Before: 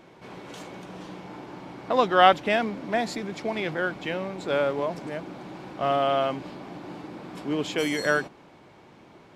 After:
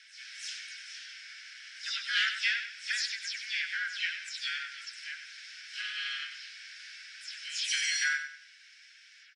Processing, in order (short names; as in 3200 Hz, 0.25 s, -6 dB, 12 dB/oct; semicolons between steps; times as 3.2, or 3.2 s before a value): spectral delay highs early, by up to 0.143 s; harmoniser -4 st -8 dB, +5 st -10 dB; steep low-pass 10000 Hz 72 dB/oct; bell 5300 Hz +13 dB 0.29 oct; in parallel at +0.5 dB: compressor 8:1, threshold -30 dBFS, peak gain reduction 18.5 dB; on the sum: soft clip -7.5 dBFS, distortion -21 dB; steep high-pass 1500 Hz 96 dB/oct; on a send: feedback echo 96 ms, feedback 33%, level -9 dB; on the sum: gain -3 dB; Opus 64 kbps 48000 Hz